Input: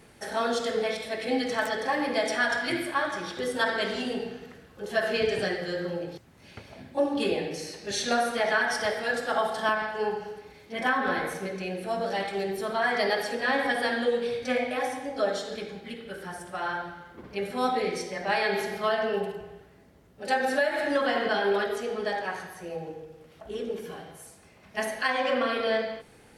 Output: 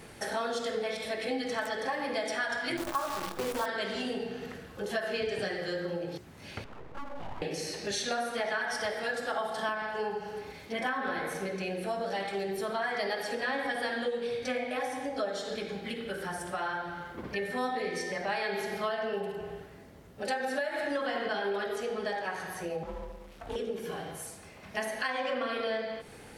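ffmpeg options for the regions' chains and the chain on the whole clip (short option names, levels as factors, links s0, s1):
-filter_complex "[0:a]asettb=1/sr,asplit=3[s0][s1][s2];[s0]atrim=end=2.774[s3];[s1]atrim=start=2.77:end=3.66,asetpts=PTS-STARTPTS,afade=t=in:d=0.004:c=qsin,afade=t=out:st=0.886:d=0.004:c=qsin,highshelf=f=1500:t=q:w=3:g=-9,acrusher=bits=6:dc=4:mix=0:aa=0.000001,asplit=2[s4][s5];[s5]adelay=21,volume=0.282[s6];[s4][s6]amix=inputs=2:normalize=0,atrim=end_sample=39249[s7];[s2]atrim=start=3.656[s8];[s3][s7]acrossfade=d=0.004:c1=hsin:c2=qsin[s9];[s9][s8]acrossfade=d=0.004:c1=qsin:c2=hsin,asettb=1/sr,asplit=3[s10][s11][s12];[s10]atrim=end=6.644[s13];[s11]atrim=start=6.64:end=7.42,asetpts=PTS-STARTPTS,afade=t=in:d=0.004:c=qsin,afade=t=out:st=0.776:d=0.004:c=qsin,lowpass=1300,acompressor=threshold=0.00501:ratio=2.5:attack=3.2:release=140:knee=1:detection=peak,aeval=exprs='abs(val(0))':c=same[s14];[s12]atrim=start=7.416[s15];[s13][s14]acrossfade=d=0.004:c1=hsin:c2=qsin[s16];[s16][s15]acrossfade=d=0.004:c1=qsin:c2=hsin,asettb=1/sr,asplit=3[s17][s18][s19];[s17]atrim=end=17.344[s20];[s18]atrim=start=17.34:end=18.12,asetpts=PTS-STARTPTS,afade=t=in:d=0.004:c=qsin,afade=t=out:st=0.776:d=0.004:c=qsin,aeval=exprs='val(0)+0.0178*sin(2*PI*1800*n/s)':c=same,asplit=2[s21][s22];[s22]adelay=12,volume=0.237[s23];[s21][s23]amix=inputs=2:normalize=0,atrim=end_sample=34398[s24];[s19]atrim=start=18.116[s25];[s20][s24]acrossfade=d=0.004:c1=hsin:c2=qsin[s26];[s26][s25]acrossfade=d=0.004:c1=qsin:c2=hsin,asettb=1/sr,asplit=3[s27][s28][s29];[s27]atrim=end=22.834[s30];[s28]atrim=start=22.83:end=23.56,asetpts=PTS-STARTPTS,afade=t=in:d=0.004:c=qsin,afade=t=out:st=0.726:d=0.004:c=qsin,aeval=exprs='max(val(0),0)':c=same,afreqshift=41[s31];[s29]atrim=start=23.556[s32];[s30][s31]acrossfade=d=0.004:c1=hsin:c2=qsin[s33];[s33][s32]acrossfade=d=0.004:c1=qsin:c2=hsin,bandreject=f=60:t=h:w=6,bandreject=f=120:t=h:w=6,bandreject=f=180:t=h:w=6,bandreject=f=240:t=h:w=6,bandreject=f=300:t=h:w=6,bandreject=f=360:t=h:w=6,bandreject=f=420:t=h:w=6,acompressor=threshold=0.0112:ratio=3,volume=1.88"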